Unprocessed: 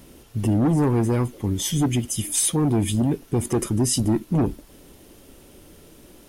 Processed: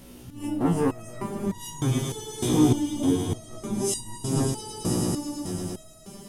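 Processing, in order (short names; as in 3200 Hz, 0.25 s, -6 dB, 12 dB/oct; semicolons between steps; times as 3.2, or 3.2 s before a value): spectral swells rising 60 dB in 0.32 s; 1.8–3.7 LPF 1300 Hz 6 dB/oct; swelling echo 0.11 s, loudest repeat 5, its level -11 dB; stepped resonator 3.3 Hz 61–950 Hz; gain +7 dB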